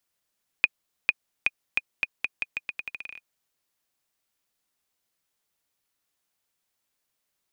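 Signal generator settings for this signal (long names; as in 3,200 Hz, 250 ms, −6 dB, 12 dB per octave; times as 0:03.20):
bouncing ball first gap 0.45 s, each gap 0.83, 2,470 Hz, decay 35 ms −5.5 dBFS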